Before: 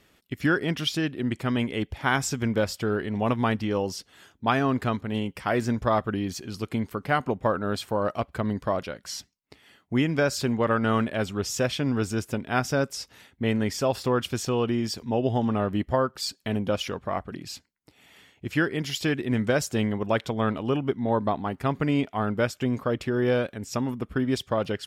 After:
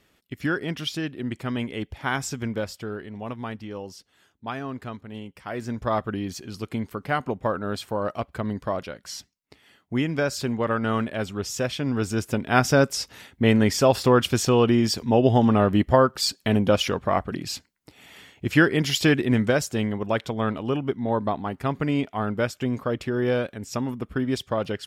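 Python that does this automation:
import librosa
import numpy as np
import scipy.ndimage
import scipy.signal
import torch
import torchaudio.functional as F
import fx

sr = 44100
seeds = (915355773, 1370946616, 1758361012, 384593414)

y = fx.gain(x, sr, db=fx.line((2.4, -2.5), (3.18, -9.0), (5.43, -9.0), (5.94, -1.0), (11.78, -1.0), (12.66, 6.5), (19.16, 6.5), (19.7, 0.0)))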